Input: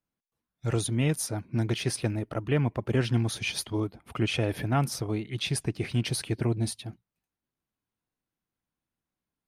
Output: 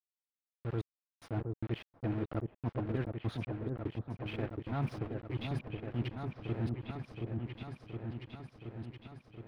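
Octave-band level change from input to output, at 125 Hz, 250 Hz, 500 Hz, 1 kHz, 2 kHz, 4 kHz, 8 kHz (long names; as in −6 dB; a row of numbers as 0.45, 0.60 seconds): −8.0 dB, −8.0 dB, −9.0 dB, −8.0 dB, −12.5 dB, −17.5 dB, below −30 dB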